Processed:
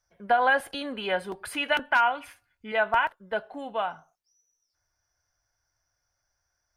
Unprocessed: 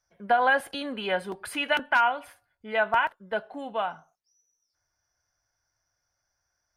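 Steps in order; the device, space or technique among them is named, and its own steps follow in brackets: low shelf boost with a cut just above (bass shelf 69 Hz +6.5 dB; peaking EQ 200 Hz -2.5 dB 0.9 oct); 2.15–2.72 s: fifteen-band graphic EQ 250 Hz +5 dB, 630 Hz -8 dB, 2.5 kHz +8 dB, 6.3 kHz +4 dB

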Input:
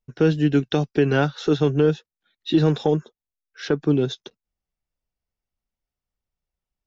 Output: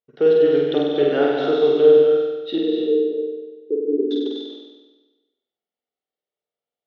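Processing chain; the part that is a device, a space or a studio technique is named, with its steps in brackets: 2.58–4.11 s: elliptic band-pass 220–440 Hz, stop band 60 dB; phone earpiece (cabinet simulation 440–3700 Hz, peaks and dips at 450 Hz +6 dB, 1 kHz -10 dB, 1.6 kHz -8 dB, 2.5 kHz -9 dB); flutter echo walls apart 8.3 m, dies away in 1.2 s; gated-style reverb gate 290 ms rising, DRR 3.5 dB

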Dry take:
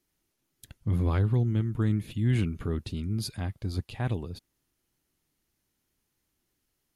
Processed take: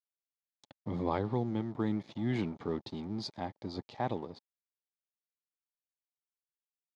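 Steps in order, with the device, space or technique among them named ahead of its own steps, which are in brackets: blown loudspeaker (crossover distortion -48.5 dBFS; cabinet simulation 230–5300 Hz, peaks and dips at 590 Hz +4 dB, 850 Hz +9 dB, 1.5 kHz -7 dB, 2.7 kHz -10 dB)

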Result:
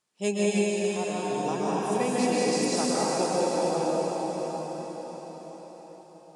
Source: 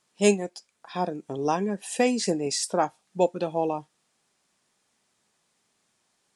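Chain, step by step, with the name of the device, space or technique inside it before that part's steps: cathedral (reverberation RT60 5.8 s, pre-delay 118 ms, DRR -9 dB); trim -8.5 dB

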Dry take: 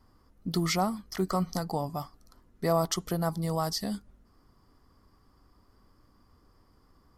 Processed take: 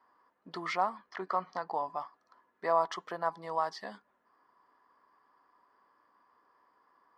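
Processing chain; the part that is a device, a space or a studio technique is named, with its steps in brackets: tin-can telephone (band-pass 620–2300 Hz; small resonant body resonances 1/1.7 kHz, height 9 dB, ringing for 25 ms); 0.97–1.75 s: low-pass 5.4 kHz 12 dB/octave

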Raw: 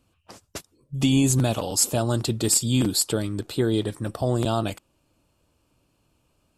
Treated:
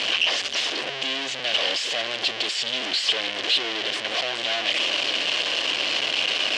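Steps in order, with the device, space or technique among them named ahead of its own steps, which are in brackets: home computer beeper (one-bit comparator; cabinet simulation 780–4900 Hz, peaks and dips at 900 Hz -10 dB, 1.3 kHz -10 dB, 3 kHz +9 dB); trim +6 dB

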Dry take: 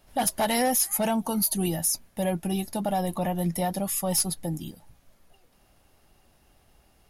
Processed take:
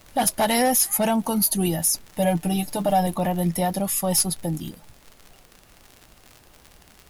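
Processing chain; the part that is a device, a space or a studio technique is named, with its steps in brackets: vinyl LP (crackle 73 per s -36 dBFS; pink noise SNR 31 dB); 2.09–3.07 s: comb 6.7 ms, depth 64%; trim +4 dB

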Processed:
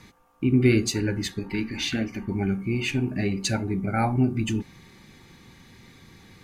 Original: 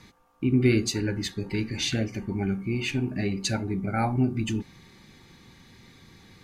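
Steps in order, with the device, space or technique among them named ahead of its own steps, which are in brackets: exciter from parts (in parallel at -11.5 dB: high-pass 3.2 kHz 12 dB/octave + saturation -25.5 dBFS, distortion -13 dB + high-pass 2.7 kHz 24 dB/octave); 1.39–2.28 s: on the sum: graphic EQ 125/250/500/1000/8000 Hz -9/+4/-7/+4/-7 dB; trim +2 dB

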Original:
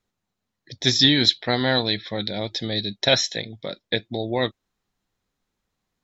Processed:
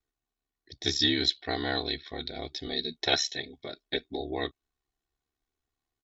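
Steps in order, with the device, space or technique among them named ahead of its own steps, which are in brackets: 2.66–4.20 s: comb 5 ms, depth 93%; ring-modulated robot voice (ring modulator 35 Hz; comb 2.7 ms, depth 69%); trim -7.5 dB

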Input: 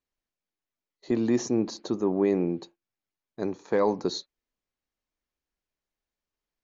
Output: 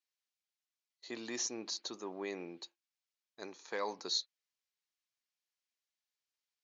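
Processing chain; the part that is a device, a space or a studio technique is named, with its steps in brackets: piezo pickup straight into a mixer (low-pass 5.1 kHz 12 dB/octave; differentiator); trim +7.5 dB

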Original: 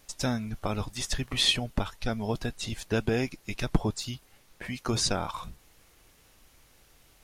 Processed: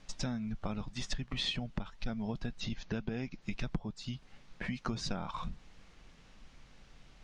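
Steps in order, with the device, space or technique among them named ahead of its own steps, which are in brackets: 2.60–3.42 s: steep low-pass 6.8 kHz 96 dB/octave; jukebox (low-pass 6.9 kHz 12 dB/octave; resonant low shelf 260 Hz +7 dB, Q 1.5; compression 5:1, threshold -32 dBFS, peak gain reduction 20.5 dB); distance through air 73 m; peaking EQ 85 Hz -11 dB 1.1 oct; trim +1 dB

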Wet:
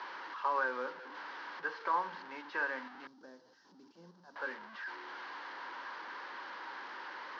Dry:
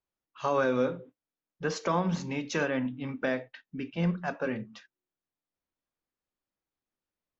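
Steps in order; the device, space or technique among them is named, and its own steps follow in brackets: digital answering machine (band-pass 300–3400 Hz; one-bit delta coder 32 kbps, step -34 dBFS; cabinet simulation 440–4200 Hz, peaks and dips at 460 Hz -4 dB, 660 Hz -9 dB, 960 Hz +10 dB, 1.6 kHz +8 dB, 2.5 kHz -7 dB, 3.6 kHz -6 dB); 3.07–4.36 s: FFT filter 200 Hz 0 dB, 2.2 kHz -29 dB, 5.6 kHz -3 dB; trim -6.5 dB

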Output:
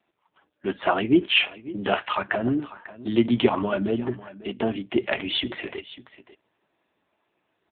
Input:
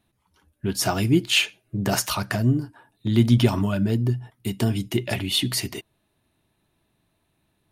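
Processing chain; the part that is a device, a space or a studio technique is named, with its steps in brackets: satellite phone (band-pass 380–3000 Hz; delay 545 ms -17 dB; trim +7 dB; AMR-NB 5.9 kbps 8 kHz)

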